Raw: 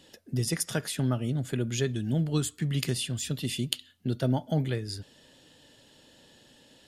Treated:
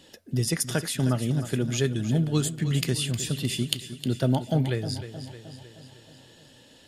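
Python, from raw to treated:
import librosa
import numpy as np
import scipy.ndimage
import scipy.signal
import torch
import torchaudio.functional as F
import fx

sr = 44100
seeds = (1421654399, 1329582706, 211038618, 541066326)

y = fx.echo_feedback(x, sr, ms=310, feedback_pct=56, wet_db=-12.0)
y = y * librosa.db_to_amplitude(3.0)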